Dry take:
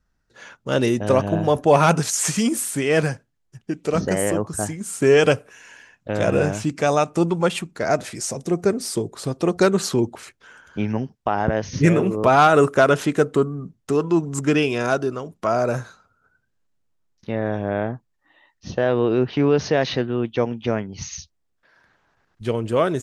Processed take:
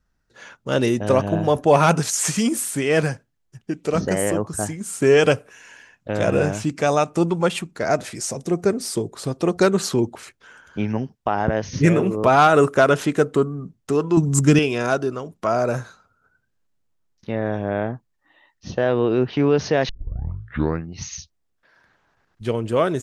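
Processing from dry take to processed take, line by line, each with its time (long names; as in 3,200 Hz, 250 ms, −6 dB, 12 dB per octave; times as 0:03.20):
0:14.17–0:14.59: bass and treble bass +11 dB, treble +9 dB
0:19.89: tape start 1.13 s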